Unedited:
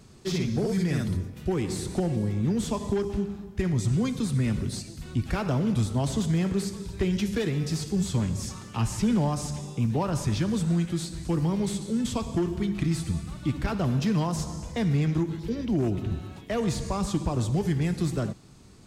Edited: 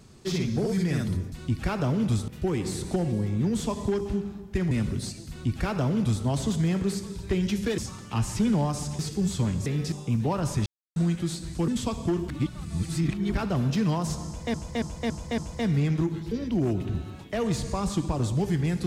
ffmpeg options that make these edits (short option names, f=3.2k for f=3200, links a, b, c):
-filter_complex "[0:a]asplit=17[a][b][c][d][e][f][g][h][i][j][k][l][m][n][o][p][q];[a]atrim=end=1.322[r];[b]atrim=start=4.988:end=5.952[s];[c]atrim=start=1.318:end=3.752[t];[d]atrim=start=4.408:end=7.482[u];[e]atrim=start=8.408:end=9.622[v];[f]atrim=start=7.738:end=8.412[w];[g]atrim=start=7.478:end=7.742[x];[h]atrim=start=9.618:end=10.36,asetpts=PTS-STARTPTS,afade=t=out:st=0.738:d=0.004:c=hsin[y];[i]atrim=start=10.36:end=10.66,asetpts=PTS-STARTPTS,volume=0[z];[j]atrim=start=10.66:end=11.382,asetpts=PTS-STARTPTS,afade=t=in:d=0.004:c=hsin[aa];[k]atrim=start=11.968:end=12.582[ab];[l]atrim=start=12.578:end=13.632,asetpts=PTS-STARTPTS,areverse[ac];[m]atrim=start=13.628:end=14.832[ad];[n]atrim=start=14.548:end=14.832[ae];[o]atrim=start=14.548:end=14.832[af];[p]atrim=start=14.548:end=14.832[ag];[q]atrim=start=14.548[ah];[r][s]acrossfade=d=0.004:c1=hsin:c2=hsin[ai];[ai][t]acrossfade=d=0.004:c1=hsin:c2=hsin[aj];[aj][u]acrossfade=d=0.004:c1=hsin:c2=hsin[ak];[ak][v]acrossfade=d=0.004:c1=hsin:c2=hsin[al];[al][w]acrossfade=d=0.004:c1=hsin:c2=hsin[am];[am][x]acrossfade=d=0.004:c1=hsin:c2=hsin[an];[y][z][aa]concat=n=3:v=0:a=1[ao];[an][ao]acrossfade=d=0.004:c1=hsin:c2=hsin[ap];[ap][ab]acrossfade=d=0.004:c1=hsin:c2=hsin[aq];[aq][ac]acrossfade=d=0.004:c1=hsin:c2=hsin[ar];[ar][ad]acrossfade=d=0.004:c1=hsin:c2=hsin[as];[as][ae]acrossfade=d=0.004:c1=hsin:c2=hsin[at];[at][af]acrossfade=d=0.004:c1=hsin:c2=hsin[au];[au][ag]acrossfade=d=0.004:c1=hsin:c2=hsin[av];[av][ah]acrossfade=d=0.004:c1=hsin:c2=hsin"